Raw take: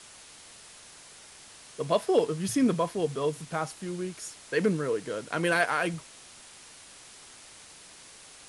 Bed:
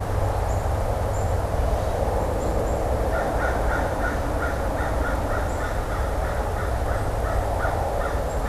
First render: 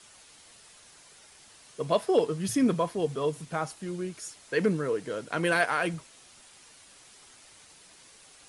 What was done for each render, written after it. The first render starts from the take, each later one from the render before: denoiser 6 dB, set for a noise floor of -51 dBFS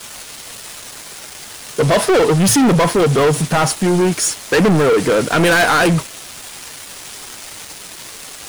in parallel at +1.5 dB: limiter -22 dBFS, peak gain reduction 10 dB; on the sum: sample leveller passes 5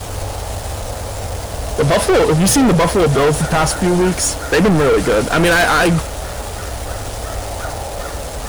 add bed -1 dB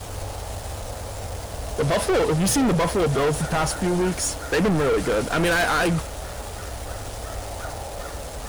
gain -8 dB

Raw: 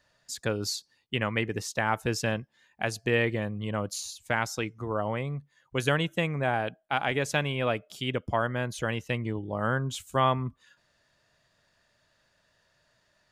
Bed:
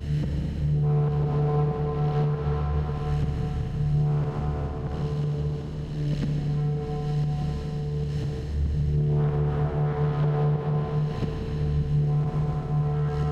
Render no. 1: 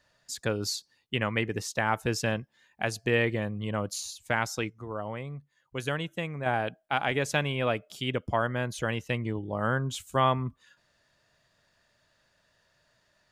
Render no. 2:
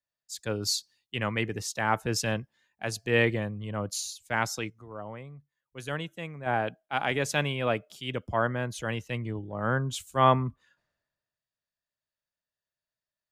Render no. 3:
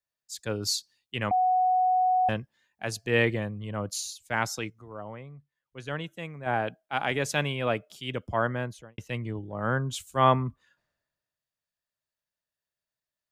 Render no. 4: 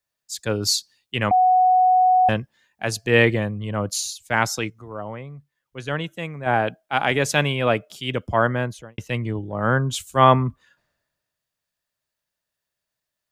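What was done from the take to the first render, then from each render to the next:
4.7–6.46 gain -5.5 dB
transient shaper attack -3 dB, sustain +1 dB; three-band expander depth 70%
1.31–2.29 bleep 739 Hz -20 dBFS; 5.15–6.04 air absorption 81 m; 8.57–8.98 studio fade out
gain +7.5 dB; limiter -1 dBFS, peak gain reduction 1.5 dB

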